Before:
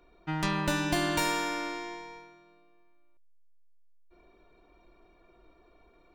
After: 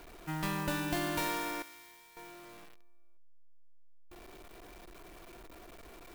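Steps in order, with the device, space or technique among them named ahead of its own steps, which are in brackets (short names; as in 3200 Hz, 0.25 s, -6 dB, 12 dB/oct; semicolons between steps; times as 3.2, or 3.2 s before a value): early CD player with a faulty converter (zero-crossing step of -41 dBFS; clock jitter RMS 0.034 ms); 1.62–2.17 passive tone stack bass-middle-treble 5-5-5; gain -6 dB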